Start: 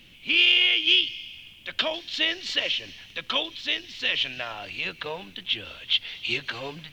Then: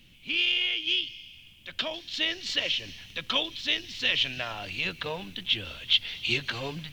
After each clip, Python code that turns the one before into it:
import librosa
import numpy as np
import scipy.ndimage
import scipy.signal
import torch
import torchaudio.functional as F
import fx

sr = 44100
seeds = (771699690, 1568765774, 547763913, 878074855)

y = fx.bass_treble(x, sr, bass_db=7, treble_db=5)
y = fx.rider(y, sr, range_db=5, speed_s=2.0)
y = F.gain(torch.from_numpy(y), -5.0).numpy()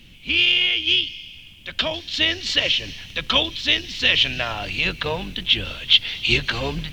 y = fx.octave_divider(x, sr, octaves=2, level_db=-2.0)
y = fx.high_shelf(y, sr, hz=10000.0, db=-5.0)
y = F.gain(torch.from_numpy(y), 8.5).numpy()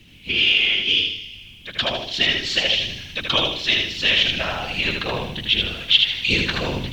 y = fx.whisperise(x, sr, seeds[0])
y = fx.echo_feedback(y, sr, ms=78, feedback_pct=36, wet_db=-3.5)
y = F.gain(torch.from_numpy(y), -1.0).numpy()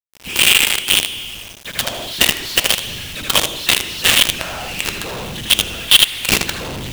y = fx.quant_companded(x, sr, bits=2)
y = F.gain(torch.from_numpy(y), -1.0).numpy()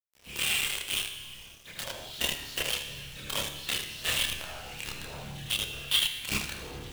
y = fx.chorus_voices(x, sr, voices=4, hz=0.46, base_ms=28, depth_ms=1.3, mix_pct=50)
y = fx.comb_fb(y, sr, f0_hz=70.0, decay_s=1.1, harmonics='all', damping=0.0, mix_pct=70)
y = F.gain(torch.from_numpy(y), -4.5).numpy()